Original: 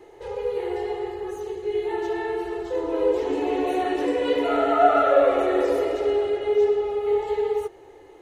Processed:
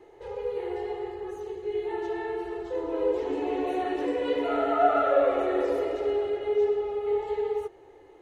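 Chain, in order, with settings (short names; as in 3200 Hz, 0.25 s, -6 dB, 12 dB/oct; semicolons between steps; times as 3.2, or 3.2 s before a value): high shelf 4700 Hz -7 dB; gain -4.5 dB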